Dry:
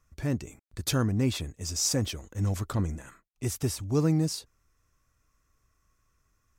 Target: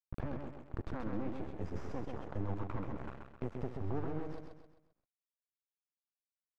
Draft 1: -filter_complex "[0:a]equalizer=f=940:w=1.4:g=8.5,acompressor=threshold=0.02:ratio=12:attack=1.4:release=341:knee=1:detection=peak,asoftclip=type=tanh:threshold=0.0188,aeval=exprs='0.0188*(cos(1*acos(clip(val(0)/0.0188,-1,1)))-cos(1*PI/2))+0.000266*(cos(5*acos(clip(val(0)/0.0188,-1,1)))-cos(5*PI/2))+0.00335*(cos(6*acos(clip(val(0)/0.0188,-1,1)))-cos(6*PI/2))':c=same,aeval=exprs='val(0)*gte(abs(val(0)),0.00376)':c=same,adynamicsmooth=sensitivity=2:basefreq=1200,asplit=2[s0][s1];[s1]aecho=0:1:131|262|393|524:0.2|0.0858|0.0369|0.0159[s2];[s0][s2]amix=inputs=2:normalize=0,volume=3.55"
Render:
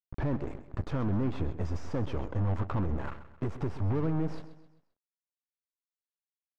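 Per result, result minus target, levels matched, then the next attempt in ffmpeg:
compression: peak gain reduction -10 dB; echo-to-direct -9.5 dB
-filter_complex "[0:a]equalizer=f=940:w=1.4:g=8.5,acompressor=threshold=0.00562:ratio=12:attack=1.4:release=341:knee=1:detection=peak,asoftclip=type=tanh:threshold=0.0188,aeval=exprs='0.0188*(cos(1*acos(clip(val(0)/0.0188,-1,1)))-cos(1*PI/2))+0.000266*(cos(5*acos(clip(val(0)/0.0188,-1,1)))-cos(5*PI/2))+0.00335*(cos(6*acos(clip(val(0)/0.0188,-1,1)))-cos(6*PI/2))':c=same,aeval=exprs='val(0)*gte(abs(val(0)),0.00376)':c=same,adynamicsmooth=sensitivity=2:basefreq=1200,asplit=2[s0][s1];[s1]aecho=0:1:131|262|393|524:0.2|0.0858|0.0369|0.0159[s2];[s0][s2]amix=inputs=2:normalize=0,volume=3.55"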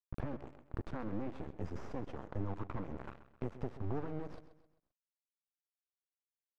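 echo-to-direct -9.5 dB
-filter_complex "[0:a]equalizer=f=940:w=1.4:g=8.5,acompressor=threshold=0.00562:ratio=12:attack=1.4:release=341:knee=1:detection=peak,asoftclip=type=tanh:threshold=0.0188,aeval=exprs='0.0188*(cos(1*acos(clip(val(0)/0.0188,-1,1)))-cos(1*PI/2))+0.000266*(cos(5*acos(clip(val(0)/0.0188,-1,1)))-cos(5*PI/2))+0.00335*(cos(6*acos(clip(val(0)/0.0188,-1,1)))-cos(6*PI/2))':c=same,aeval=exprs='val(0)*gte(abs(val(0)),0.00376)':c=same,adynamicsmooth=sensitivity=2:basefreq=1200,asplit=2[s0][s1];[s1]aecho=0:1:131|262|393|524|655:0.596|0.256|0.11|0.0474|0.0204[s2];[s0][s2]amix=inputs=2:normalize=0,volume=3.55"

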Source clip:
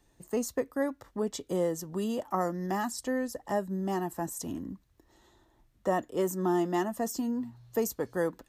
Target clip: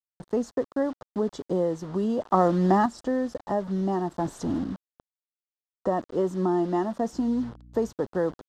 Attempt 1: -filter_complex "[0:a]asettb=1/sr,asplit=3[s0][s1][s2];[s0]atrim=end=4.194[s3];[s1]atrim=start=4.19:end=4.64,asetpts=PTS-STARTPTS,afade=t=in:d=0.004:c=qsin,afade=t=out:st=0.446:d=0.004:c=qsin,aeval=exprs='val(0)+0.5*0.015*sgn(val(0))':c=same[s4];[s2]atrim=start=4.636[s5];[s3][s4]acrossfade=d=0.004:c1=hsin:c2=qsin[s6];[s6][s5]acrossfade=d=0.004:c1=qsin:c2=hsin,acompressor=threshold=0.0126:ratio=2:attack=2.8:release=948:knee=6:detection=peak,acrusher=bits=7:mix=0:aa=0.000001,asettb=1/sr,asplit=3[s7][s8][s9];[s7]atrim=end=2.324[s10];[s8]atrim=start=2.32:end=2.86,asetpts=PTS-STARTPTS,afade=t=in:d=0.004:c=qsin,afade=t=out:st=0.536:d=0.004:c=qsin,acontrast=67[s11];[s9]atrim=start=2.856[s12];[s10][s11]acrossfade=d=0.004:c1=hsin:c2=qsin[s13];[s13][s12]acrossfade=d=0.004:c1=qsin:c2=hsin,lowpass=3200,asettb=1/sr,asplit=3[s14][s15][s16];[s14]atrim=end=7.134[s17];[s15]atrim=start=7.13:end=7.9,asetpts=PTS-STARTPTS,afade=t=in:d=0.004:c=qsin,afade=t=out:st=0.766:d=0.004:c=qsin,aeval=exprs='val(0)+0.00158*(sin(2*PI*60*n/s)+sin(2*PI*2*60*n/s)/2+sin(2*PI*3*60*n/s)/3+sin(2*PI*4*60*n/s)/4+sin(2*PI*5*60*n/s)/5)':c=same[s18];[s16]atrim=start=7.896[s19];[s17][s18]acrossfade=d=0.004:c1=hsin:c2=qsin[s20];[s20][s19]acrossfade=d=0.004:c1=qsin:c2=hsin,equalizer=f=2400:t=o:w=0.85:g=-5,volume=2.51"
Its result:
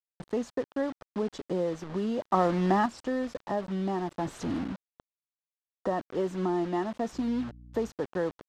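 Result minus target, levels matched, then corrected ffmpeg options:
compression: peak gain reduction +4.5 dB; 2 kHz band +4.5 dB
-filter_complex "[0:a]asettb=1/sr,asplit=3[s0][s1][s2];[s0]atrim=end=4.194[s3];[s1]atrim=start=4.19:end=4.64,asetpts=PTS-STARTPTS,afade=t=in:d=0.004:c=qsin,afade=t=out:st=0.446:d=0.004:c=qsin,aeval=exprs='val(0)+0.5*0.015*sgn(val(0))':c=same[s4];[s2]atrim=start=4.636[s5];[s3][s4]acrossfade=d=0.004:c1=hsin:c2=qsin[s6];[s6][s5]acrossfade=d=0.004:c1=qsin:c2=hsin,acompressor=threshold=0.0355:ratio=2:attack=2.8:release=948:knee=6:detection=peak,acrusher=bits=7:mix=0:aa=0.000001,asettb=1/sr,asplit=3[s7][s8][s9];[s7]atrim=end=2.324[s10];[s8]atrim=start=2.32:end=2.86,asetpts=PTS-STARTPTS,afade=t=in:d=0.004:c=qsin,afade=t=out:st=0.536:d=0.004:c=qsin,acontrast=67[s11];[s9]atrim=start=2.856[s12];[s10][s11]acrossfade=d=0.004:c1=hsin:c2=qsin[s13];[s13][s12]acrossfade=d=0.004:c1=qsin:c2=hsin,lowpass=3200,asettb=1/sr,asplit=3[s14][s15][s16];[s14]atrim=end=7.134[s17];[s15]atrim=start=7.13:end=7.9,asetpts=PTS-STARTPTS,afade=t=in:d=0.004:c=qsin,afade=t=out:st=0.766:d=0.004:c=qsin,aeval=exprs='val(0)+0.00158*(sin(2*PI*60*n/s)+sin(2*PI*2*60*n/s)/2+sin(2*PI*3*60*n/s)/3+sin(2*PI*4*60*n/s)/4+sin(2*PI*5*60*n/s)/5)':c=same[s18];[s16]atrim=start=7.896[s19];[s17][s18]acrossfade=d=0.004:c1=hsin:c2=qsin[s20];[s20][s19]acrossfade=d=0.004:c1=qsin:c2=hsin,equalizer=f=2400:t=o:w=0.85:g=-14,volume=2.51"

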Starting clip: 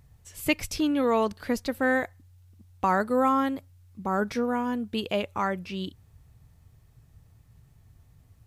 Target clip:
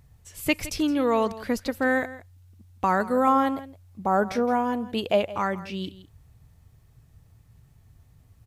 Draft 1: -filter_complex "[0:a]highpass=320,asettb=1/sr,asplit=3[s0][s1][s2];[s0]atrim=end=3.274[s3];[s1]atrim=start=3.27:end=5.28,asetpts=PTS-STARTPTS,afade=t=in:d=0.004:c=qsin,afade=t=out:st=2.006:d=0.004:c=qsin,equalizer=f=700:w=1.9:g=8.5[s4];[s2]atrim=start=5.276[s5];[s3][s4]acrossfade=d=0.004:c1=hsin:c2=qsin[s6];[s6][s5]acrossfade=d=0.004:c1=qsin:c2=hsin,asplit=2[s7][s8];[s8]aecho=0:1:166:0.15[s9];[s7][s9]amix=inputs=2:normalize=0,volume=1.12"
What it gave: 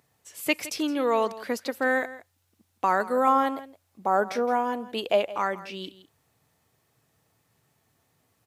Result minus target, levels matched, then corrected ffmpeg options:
250 Hz band -4.0 dB
-filter_complex "[0:a]asettb=1/sr,asplit=3[s0][s1][s2];[s0]atrim=end=3.274[s3];[s1]atrim=start=3.27:end=5.28,asetpts=PTS-STARTPTS,afade=t=in:d=0.004:c=qsin,afade=t=out:st=2.006:d=0.004:c=qsin,equalizer=f=700:w=1.9:g=8.5[s4];[s2]atrim=start=5.276[s5];[s3][s4]acrossfade=d=0.004:c1=hsin:c2=qsin[s6];[s6][s5]acrossfade=d=0.004:c1=qsin:c2=hsin,asplit=2[s7][s8];[s8]aecho=0:1:166:0.15[s9];[s7][s9]amix=inputs=2:normalize=0,volume=1.12"

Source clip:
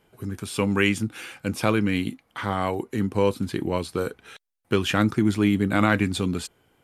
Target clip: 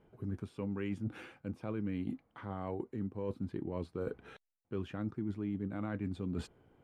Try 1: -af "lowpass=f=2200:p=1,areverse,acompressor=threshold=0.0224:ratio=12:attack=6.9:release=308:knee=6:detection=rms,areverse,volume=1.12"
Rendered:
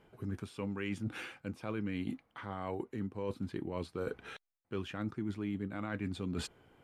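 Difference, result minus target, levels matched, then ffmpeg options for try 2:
2 kHz band +6.5 dB
-af "lowpass=f=580:p=1,areverse,acompressor=threshold=0.0224:ratio=12:attack=6.9:release=308:knee=6:detection=rms,areverse,volume=1.12"

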